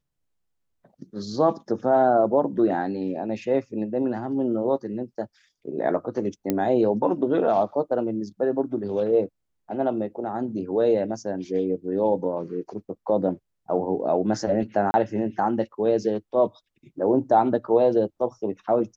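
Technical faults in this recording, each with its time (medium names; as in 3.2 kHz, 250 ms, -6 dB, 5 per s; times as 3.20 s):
6.50 s: pop -10 dBFS
14.91–14.94 s: dropout 30 ms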